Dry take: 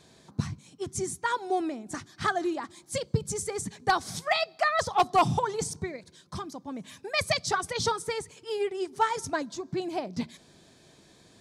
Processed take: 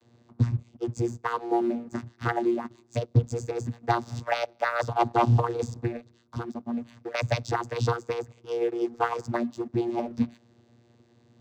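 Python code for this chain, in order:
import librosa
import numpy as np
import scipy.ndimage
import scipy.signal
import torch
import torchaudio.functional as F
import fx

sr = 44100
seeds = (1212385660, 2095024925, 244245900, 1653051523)

y = fx.vocoder(x, sr, bands=16, carrier='saw', carrier_hz=118.0)
y = fx.leveller(y, sr, passes=1)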